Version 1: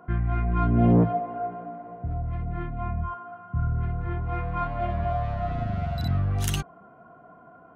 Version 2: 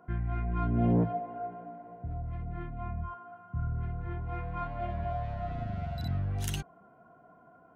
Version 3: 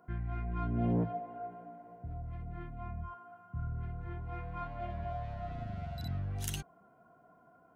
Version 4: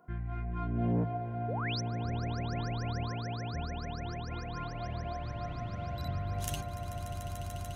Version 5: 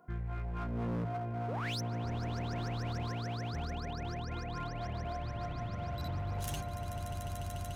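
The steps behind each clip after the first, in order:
notch filter 1,200 Hz, Q 6.8; level −7 dB
high-shelf EQ 4,600 Hz +6.5 dB; level −5 dB
sound drawn into the spectrogram rise, 0:01.48–0:01.81, 390–6,300 Hz −38 dBFS; echo that builds up and dies away 146 ms, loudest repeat 8, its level −12 dB
hard clipping −33 dBFS, distortion −11 dB

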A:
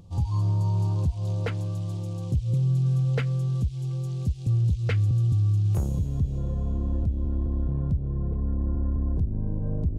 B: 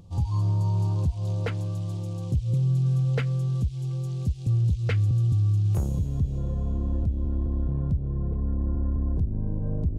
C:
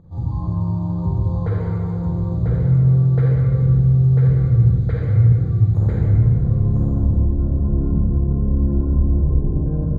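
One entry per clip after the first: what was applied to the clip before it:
no processing that can be heard
moving average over 16 samples; single-tap delay 995 ms −3.5 dB; convolution reverb RT60 2.6 s, pre-delay 32 ms, DRR −5.5 dB

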